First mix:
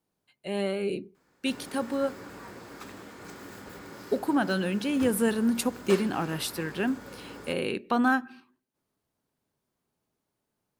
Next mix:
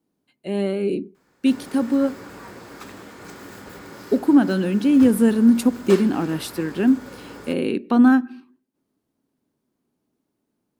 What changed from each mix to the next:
speech: add parametric band 270 Hz +13 dB 1.2 octaves
background +4.5 dB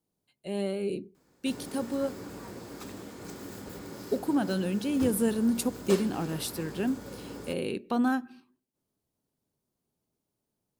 speech: add parametric band 270 Hz −13 dB 1.2 octaves
master: add parametric band 1,600 Hz −9 dB 2.2 octaves

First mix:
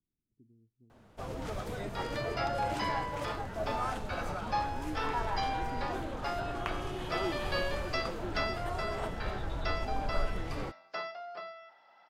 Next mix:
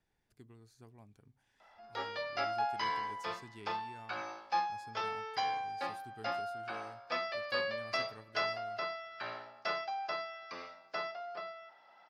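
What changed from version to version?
speech: remove transistor ladder low-pass 340 Hz, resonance 40%
first sound: muted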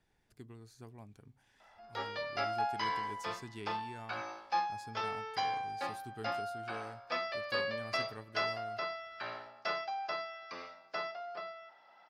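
speech +5.5 dB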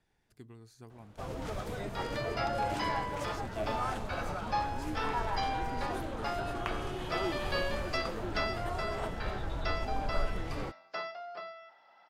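first sound: unmuted

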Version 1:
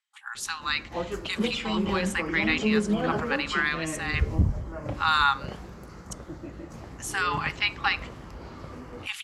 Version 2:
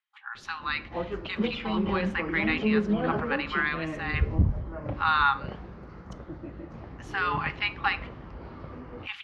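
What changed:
speech: send +9.0 dB
master: add high-frequency loss of the air 290 metres

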